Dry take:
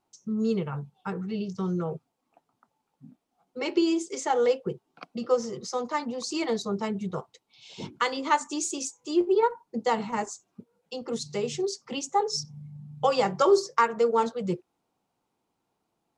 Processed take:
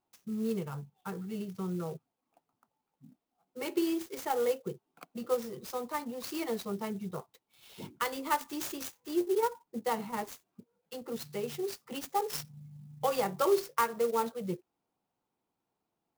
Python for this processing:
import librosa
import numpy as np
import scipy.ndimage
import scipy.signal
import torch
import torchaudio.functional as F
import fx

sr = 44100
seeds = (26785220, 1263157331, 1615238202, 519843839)

y = fx.clock_jitter(x, sr, seeds[0], jitter_ms=0.035)
y = y * 10.0 ** (-6.5 / 20.0)